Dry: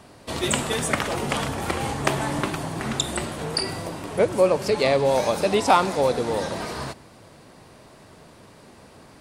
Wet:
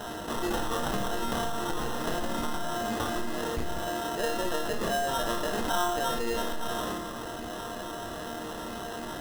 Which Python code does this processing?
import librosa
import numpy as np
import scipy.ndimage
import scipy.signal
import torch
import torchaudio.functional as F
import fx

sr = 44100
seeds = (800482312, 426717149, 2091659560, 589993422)

p1 = np.minimum(x, 2.0 * 10.0 ** (-14.5 / 20.0) - x)
p2 = fx.low_shelf(p1, sr, hz=460.0, db=-3.0)
p3 = fx.schmitt(p2, sr, flips_db=-18.5)
p4 = p2 + (p3 * 10.0 ** (-3.0 / 20.0))
p5 = fx.resonator_bank(p4, sr, root=58, chord='sus4', decay_s=0.37)
p6 = fx.sample_hold(p5, sr, seeds[0], rate_hz=2300.0, jitter_pct=0)
p7 = fx.room_flutter(p6, sr, wall_m=9.3, rt60_s=0.32)
p8 = fx.env_flatten(p7, sr, amount_pct=70)
y = p8 * 10.0 ** (3.5 / 20.0)